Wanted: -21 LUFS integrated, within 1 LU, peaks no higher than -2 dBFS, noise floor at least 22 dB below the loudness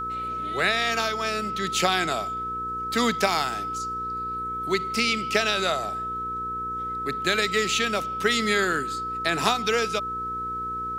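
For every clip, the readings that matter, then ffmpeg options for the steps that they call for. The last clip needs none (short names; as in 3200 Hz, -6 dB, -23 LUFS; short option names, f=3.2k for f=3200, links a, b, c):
hum 60 Hz; harmonics up to 480 Hz; hum level -39 dBFS; steady tone 1300 Hz; tone level -28 dBFS; loudness -25.0 LUFS; peak -8.5 dBFS; loudness target -21.0 LUFS
-> -af "bandreject=f=60:t=h:w=4,bandreject=f=120:t=h:w=4,bandreject=f=180:t=h:w=4,bandreject=f=240:t=h:w=4,bandreject=f=300:t=h:w=4,bandreject=f=360:t=h:w=4,bandreject=f=420:t=h:w=4,bandreject=f=480:t=h:w=4"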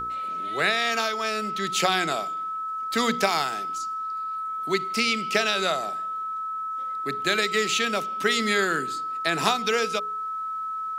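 hum none; steady tone 1300 Hz; tone level -28 dBFS
-> -af "bandreject=f=1.3k:w=30"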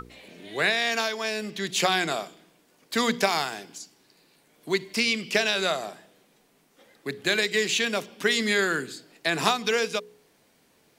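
steady tone none; loudness -25.5 LUFS; peak -8.0 dBFS; loudness target -21.0 LUFS
-> -af "volume=4.5dB"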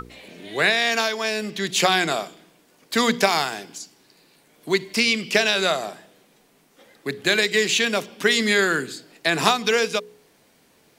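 loudness -21.0 LUFS; peak -3.5 dBFS; noise floor -59 dBFS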